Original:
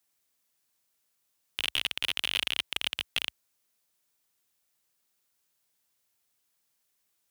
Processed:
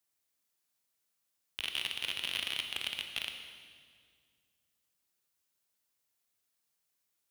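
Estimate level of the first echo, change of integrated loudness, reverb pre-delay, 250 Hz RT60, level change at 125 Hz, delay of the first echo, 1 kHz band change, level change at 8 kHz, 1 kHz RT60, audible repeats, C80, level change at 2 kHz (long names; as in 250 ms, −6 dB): no echo audible, −5.5 dB, 21 ms, 2.6 s, −4.5 dB, no echo audible, −5.0 dB, −5.0 dB, 1.9 s, no echo audible, 7.0 dB, −5.0 dB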